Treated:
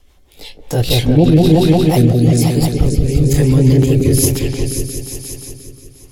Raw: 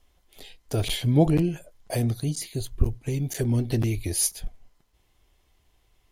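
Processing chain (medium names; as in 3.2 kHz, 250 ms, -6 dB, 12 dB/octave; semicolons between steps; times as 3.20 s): sawtooth pitch modulation +3 st, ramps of 987 ms; band-stop 660 Hz, Q 16; delay with an opening low-pass 177 ms, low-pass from 750 Hz, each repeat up 2 oct, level 0 dB; rotary cabinet horn 6 Hz, later 1.1 Hz, at 0.29 s; loudness maximiser +15 dB; trim -1 dB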